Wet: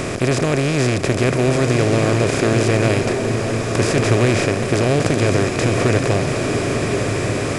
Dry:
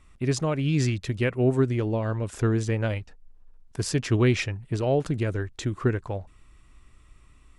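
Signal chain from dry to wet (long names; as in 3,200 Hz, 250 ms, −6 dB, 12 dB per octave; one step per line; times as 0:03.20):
compressor on every frequency bin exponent 0.2
slow-attack reverb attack 1,600 ms, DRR 4 dB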